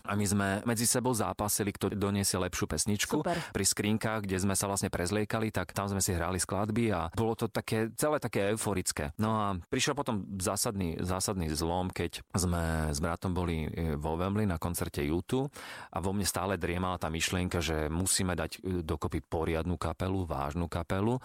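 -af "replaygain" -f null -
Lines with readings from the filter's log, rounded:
track_gain = +14.0 dB
track_peak = 0.108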